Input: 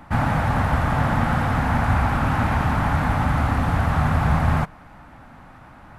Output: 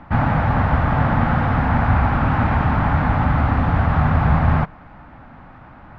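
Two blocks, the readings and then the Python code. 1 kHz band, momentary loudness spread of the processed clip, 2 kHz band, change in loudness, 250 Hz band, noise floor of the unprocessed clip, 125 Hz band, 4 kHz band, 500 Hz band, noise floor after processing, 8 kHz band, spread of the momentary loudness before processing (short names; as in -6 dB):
+2.5 dB, 2 LU, +1.5 dB, +3.0 dB, +3.0 dB, -45 dBFS, +3.5 dB, -2.5 dB, +2.5 dB, -43 dBFS, under -15 dB, 1 LU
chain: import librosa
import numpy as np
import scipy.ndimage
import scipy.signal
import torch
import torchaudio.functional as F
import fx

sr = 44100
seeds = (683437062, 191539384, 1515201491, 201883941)

y = fx.air_absorb(x, sr, metres=260.0)
y = y * 10.0 ** (3.5 / 20.0)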